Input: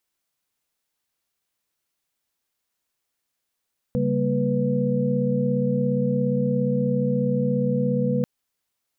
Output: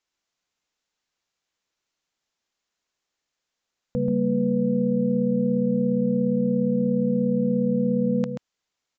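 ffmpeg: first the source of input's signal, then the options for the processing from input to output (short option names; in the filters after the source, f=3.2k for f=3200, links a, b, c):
-f lavfi -i "aevalsrc='0.0562*(sin(2*PI*138.59*t)+sin(2*PI*196*t)+sin(2*PI*233.08*t)+sin(2*PI*493.88*t))':d=4.29:s=44100"
-af "equalizer=f=100:w=0.82:g=-3.5,aecho=1:1:133:0.447,aresample=16000,aresample=44100"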